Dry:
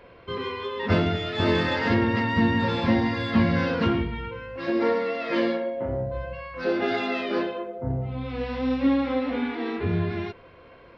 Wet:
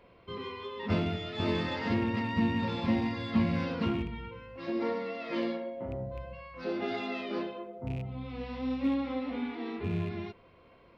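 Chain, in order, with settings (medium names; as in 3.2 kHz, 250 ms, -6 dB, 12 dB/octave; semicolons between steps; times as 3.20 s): rattle on loud lows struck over -25 dBFS, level -29 dBFS; graphic EQ with 31 bands 200 Hz +5 dB, 500 Hz -3 dB, 1.6 kHz -7 dB; trim -8 dB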